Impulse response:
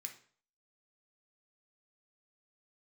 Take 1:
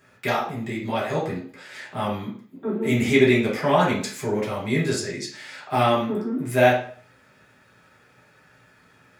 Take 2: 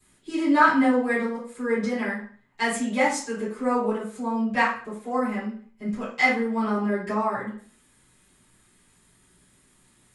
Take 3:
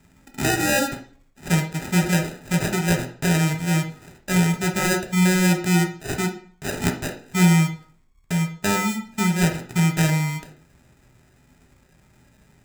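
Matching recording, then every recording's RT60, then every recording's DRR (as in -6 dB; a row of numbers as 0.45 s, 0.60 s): 3; 0.50 s, 0.50 s, 0.50 s; -7.0 dB, -15.5 dB, 3.0 dB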